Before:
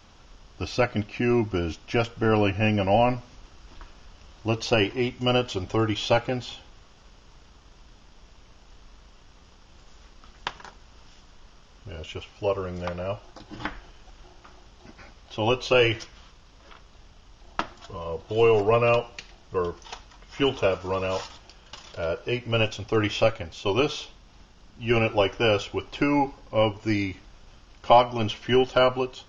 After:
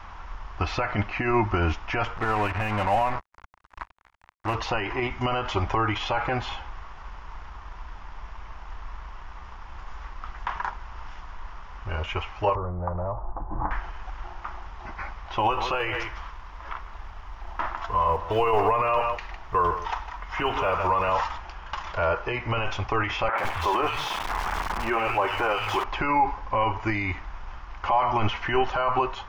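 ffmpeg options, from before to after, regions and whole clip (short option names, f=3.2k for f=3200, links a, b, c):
-filter_complex "[0:a]asettb=1/sr,asplit=3[a][b][c];[a]atrim=end=2.174[d];[b]atrim=start=2.17:end=4.55,asetpts=PTS-STARTPTS,afade=t=in:d=0.004:c=qsin,afade=t=out:st=2.376:d=0.004:c=qsin,acompressor=threshold=-42dB:ratio=1.5:attack=3.2:release=140:knee=1:detection=peak,acrusher=bits=5:mix=0:aa=0.5[e];[c]atrim=start=4.546[f];[d][e]acrossfade=d=0.004:c1=hsin:c2=qsin[g];[g][f]acrossfade=d=0.004:c1=qsin:c2=hsin,asettb=1/sr,asplit=3[h][i][j];[h]atrim=end=12.554[k];[i]atrim=start=12.55:end=13.71,asetpts=PTS-STARTPTS,afade=t=in:d=0.004:c=qsin,afade=t=out:st=1.156:d=0.004:c=qsin,lowpass=f=1k:w=0.5412,lowpass=f=1k:w=1.3066,lowshelf=f=130:g=6.5,acompressor=threshold=-32dB:ratio=10:attack=3.2:release=140:knee=1:detection=peak[l];[j]atrim=start=13.706[m];[k][l]acrossfade=d=0.004:c1=hsin:c2=qsin[n];[n][m]acrossfade=d=0.004:c1=qsin:c2=hsin,asettb=1/sr,asplit=3[o][p][q];[o]atrim=end=15.384[r];[p]atrim=start=15.38:end=21.12,asetpts=PTS-STARTPTS,afade=t=in:d=0.004:c=qsin,afade=t=out:st=5.736:d=0.004:c=qsin,equalizer=f=120:w=1.2:g=-3,acrusher=bits=7:mode=log:mix=0:aa=0.000001,aecho=1:1:155:0.158,atrim=end_sample=253134[s];[q]atrim=start=21.116[t];[r][s]acrossfade=d=0.004:c1=hsin:c2=qsin[u];[u][t]acrossfade=d=0.004:c1=qsin:c2=hsin,asettb=1/sr,asplit=3[v][w][x];[v]atrim=end=23.284[y];[w]atrim=start=23.28:end=25.84,asetpts=PTS-STARTPTS,afade=t=in:d=0.004:c=qsin,afade=t=out:st=2.556:d=0.004:c=qsin,aeval=exprs='val(0)+0.5*0.0355*sgn(val(0))':c=same,lowshelf=f=140:g=-10.5,acrossover=split=150|2300[z][aa][ab];[ab]adelay=100[ac];[z]adelay=160[ad];[ad][aa][ac]amix=inputs=3:normalize=0,atrim=end_sample=112896[ae];[x]atrim=start=25.836[af];[y][ae]acrossfade=d=0.004:c1=hsin:c2=qsin[ag];[ag][af]acrossfade=d=0.004:c1=qsin:c2=hsin,equalizer=f=125:t=o:w=1:g=-9,equalizer=f=250:t=o:w=1:g=-11,equalizer=f=500:t=o:w=1:g=-9,equalizer=f=1k:t=o:w=1:g=11,equalizer=f=2k:t=o:w=1:g=10,alimiter=limit=-22dB:level=0:latency=1:release=47,tiltshelf=f=1.5k:g=10,volume=4dB"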